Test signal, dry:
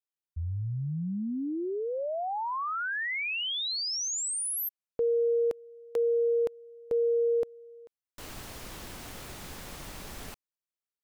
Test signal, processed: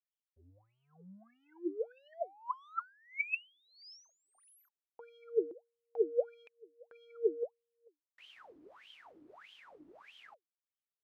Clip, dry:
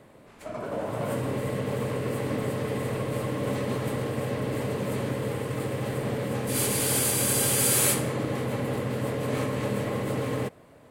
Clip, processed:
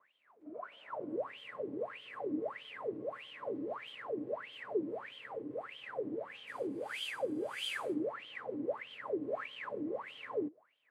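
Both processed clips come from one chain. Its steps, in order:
in parallel at −6 dB: dead-zone distortion −42 dBFS
on the sum: LFO wah 1.6 Hz 290–3,200 Hz, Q 22
level +4 dB

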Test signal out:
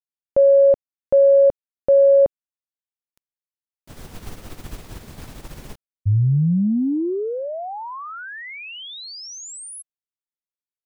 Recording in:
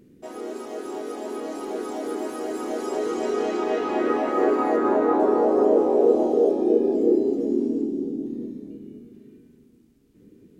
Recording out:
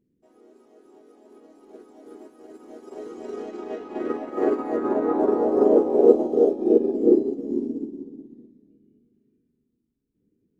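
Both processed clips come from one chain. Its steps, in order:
low-shelf EQ 480 Hz +8.5 dB
expander for the loud parts 2.5 to 1, over −27 dBFS
level +1.5 dB

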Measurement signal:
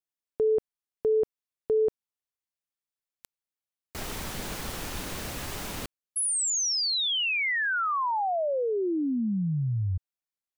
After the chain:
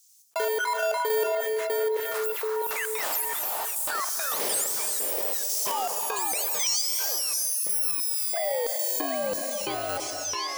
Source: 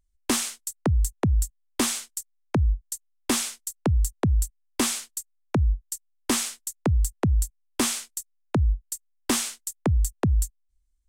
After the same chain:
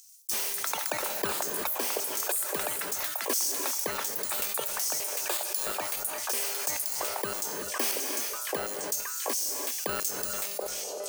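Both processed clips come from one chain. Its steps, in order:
samples in bit-reversed order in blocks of 32 samples
in parallel at −8 dB: log-companded quantiser 2 bits
on the sum: tuned comb filter 200 Hz, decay 0.78 s, harmonics all, mix 70%
square-wave tremolo 0.91 Hz, depth 60%, duty 20%
on a send: echo through a band-pass that steps 731 ms, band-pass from 590 Hz, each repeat 0.7 octaves, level −3.5 dB
on the sum: auto-filter high-pass square 1.5 Hz 500–6,100 Hz
delay with pitch and tempo change per echo 92 ms, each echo +7 semitones, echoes 3
reverb whose tail is shaped and stops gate 400 ms rising, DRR 11 dB
envelope flattener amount 70%
level +2 dB

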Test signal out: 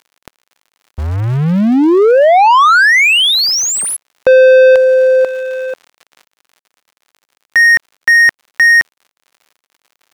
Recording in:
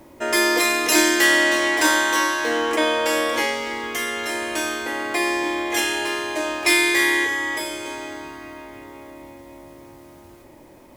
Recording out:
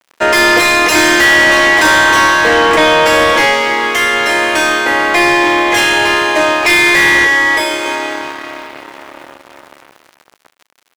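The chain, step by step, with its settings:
surface crackle 300 per second −41 dBFS
dead-zone distortion −39 dBFS
mid-hump overdrive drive 25 dB, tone 2,400 Hz, clips at −2.5 dBFS
level +3 dB

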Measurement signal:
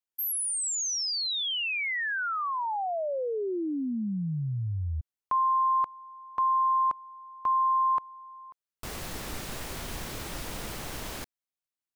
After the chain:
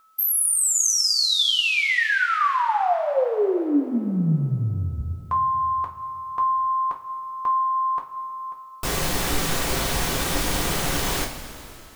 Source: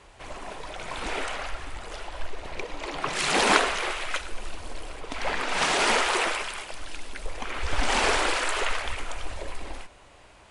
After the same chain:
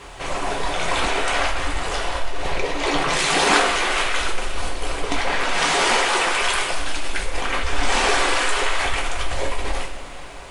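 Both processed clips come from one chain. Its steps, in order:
in parallel at +1 dB: compressor whose output falls as the input rises −33 dBFS, ratio −0.5
on the sum: steady tone 1,300 Hz −55 dBFS
coupled-rooms reverb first 0.27 s, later 3.1 s, from −17 dB, DRR 0 dB
bit-depth reduction 12 bits, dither triangular
level +1 dB

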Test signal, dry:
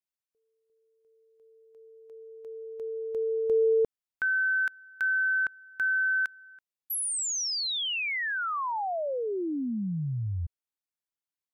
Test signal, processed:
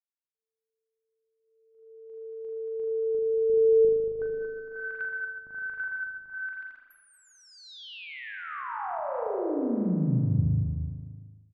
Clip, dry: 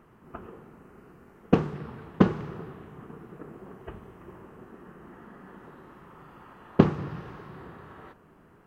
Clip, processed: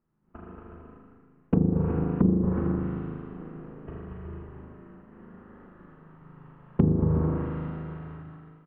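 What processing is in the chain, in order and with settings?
mains-hum notches 50/100/150/200 Hz
soft clipping −8.5 dBFS
spring reverb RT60 2.1 s, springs 38 ms, chirp 30 ms, DRR −3 dB
downward expander −37 dBFS, range −21 dB
parametric band 98 Hz −3 dB 1.6 octaves
on a send: bouncing-ball delay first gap 230 ms, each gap 0.6×, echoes 5
on the sum: treble cut that deepens with the level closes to 430 Hz, closed at −17.5 dBFS
bass and treble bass +11 dB, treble −14 dB
level −6.5 dB

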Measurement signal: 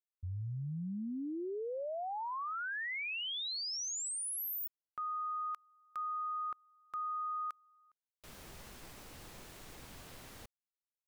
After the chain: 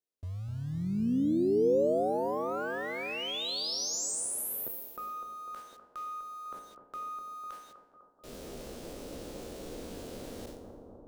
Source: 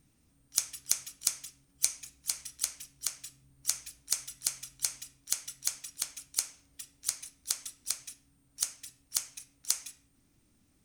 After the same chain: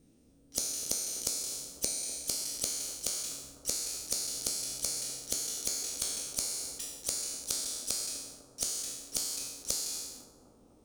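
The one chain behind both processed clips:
peak hold with a decay on every bin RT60 0.95 s
in parallel at −5.5 dB: bit-depth reduction 8 bits, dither none
on the sum: downward compressor 12 to 1, threshold −27 dBFS
on a send: bucket-brigade delay 250 ms, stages 2,048, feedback 73%, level −6.5 dB
on the sum: harmonic generator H 2 −16 dB, 6 −27 dB, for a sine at −6.5 dBFS
graphic EQ with 10 bands 125 Hz −4 dB, 250 Hz +6 dB, 500 Hz +10 dB, 1,000 Hz −6 dB, 2,000 Hz −6 dB, 16,000 Hz −6 dB

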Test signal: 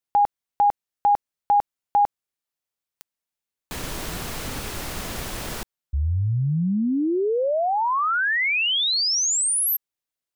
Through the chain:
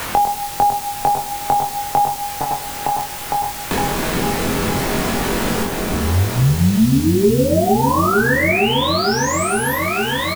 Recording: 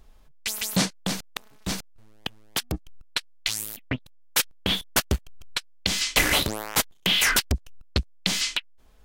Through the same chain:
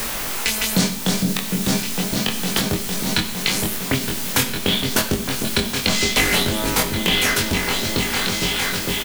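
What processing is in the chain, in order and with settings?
fade-out on the ending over 2.60 s
in parallel at +2 dB: downward compressor, threshold −37 dBFS
on the sum: hollow resonant body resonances 230/390 Hz, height 10 dB, ringing for 100 ms
on a send: echo whose low-pass opens from repeat to repeat 457 ms, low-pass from 400 Hz, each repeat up 2 octaves, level −3 dB
on the sum: coupled-rooms reverb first 0.55 s, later 4.9 s, from −21 dB, DRR 5.5 dB
bit-depth reduction 6 bits, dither triangular
double-tracking delay 22 ms −2 dB
multiband upward and downward compressor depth 70%

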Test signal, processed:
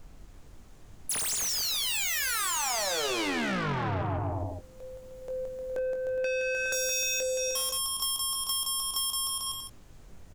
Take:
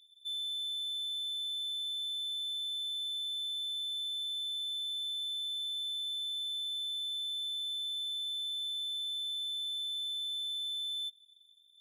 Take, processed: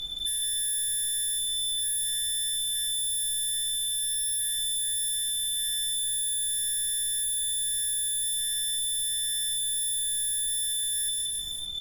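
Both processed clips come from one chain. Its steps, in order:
running median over 3 samples
in parallel at +1 dB: sine wavefolder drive 19 dB, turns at −22.5 dBFS
on the sum: parametric band 6,800 Hz +7 dB 0.5 octaves
on a send: bouncing-ball delay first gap 170 ms, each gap 0.8×, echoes 5
on the sum: soft clipping −24 dBFS
background noise brown −49 dBFS
double-tracking delay 21 ms −8.5 dB
downward compressor, threshold −29 dBFS
level +1 dB

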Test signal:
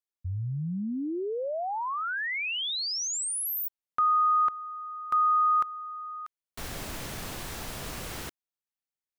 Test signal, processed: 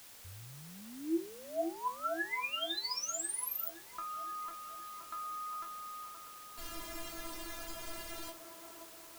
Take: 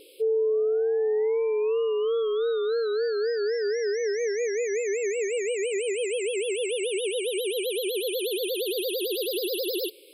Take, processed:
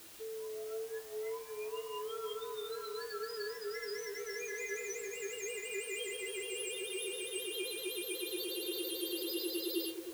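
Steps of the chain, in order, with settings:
stiff-string resonator 330 Hz, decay 0.23 s, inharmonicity 0.002
bit-depth reduction 10 bits, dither triangular
delay with a band-pass on its return 523 ms, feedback 57%, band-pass 650 Hz, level −4 dB
level +6 dB

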